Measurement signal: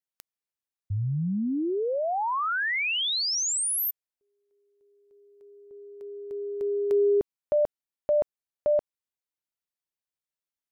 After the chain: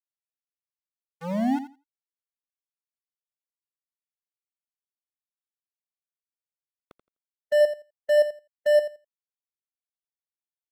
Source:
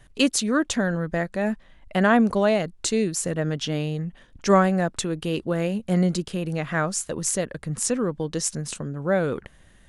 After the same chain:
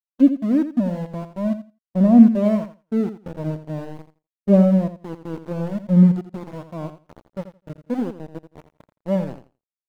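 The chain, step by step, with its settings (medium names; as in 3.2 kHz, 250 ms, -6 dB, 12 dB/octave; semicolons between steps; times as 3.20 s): FFT filter 110 Hz 0 dB, 270 Hz +4 dB, 420 Hz -6 dB, 590 Hz 0 dB, 1.8 kHz -29 dB, 3.8 kHz -19 dB; small samples zeroed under -22.5 dBFS; on a send: feedback delay 84 ms, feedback 28%, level -8 dB; on the sum: spectral contrast expander 1.5:1; trim +5 dB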